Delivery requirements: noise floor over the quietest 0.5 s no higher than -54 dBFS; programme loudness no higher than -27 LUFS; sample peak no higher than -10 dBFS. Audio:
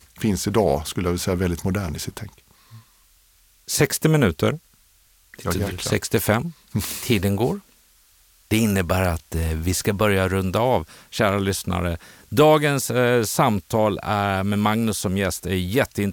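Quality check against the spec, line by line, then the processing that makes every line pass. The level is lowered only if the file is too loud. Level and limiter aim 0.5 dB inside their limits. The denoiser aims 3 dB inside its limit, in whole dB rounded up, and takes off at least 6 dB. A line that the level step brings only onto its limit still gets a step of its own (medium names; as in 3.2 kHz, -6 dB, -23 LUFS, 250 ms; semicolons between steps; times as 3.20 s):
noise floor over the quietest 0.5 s -57 dBFS: pass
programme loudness -21.5 LUFS: fail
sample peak -5.0 dBFS: fail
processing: trim -6 dB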